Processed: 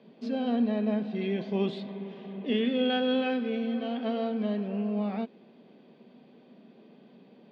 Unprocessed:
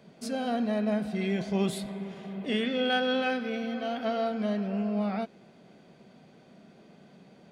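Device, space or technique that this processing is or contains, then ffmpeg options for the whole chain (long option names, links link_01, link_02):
kitchen radio: -af "highpass=220,equalizer=frequency=240:width_type=q:width=4:gain=7,equalizer=frequency=440:width_type=q:width=4:gain=3,equalizer=frequency=690:width_type=q:width=4:gain=-5,equalizer=frequency=1400:width_type=q:width=4:gain=-9,equalizer=frequency=2100:width_type=q:width=4:gain=-5,lowpass=frequency=3800:width=0.5412,lowpass=frequency=3800:width=1.3066"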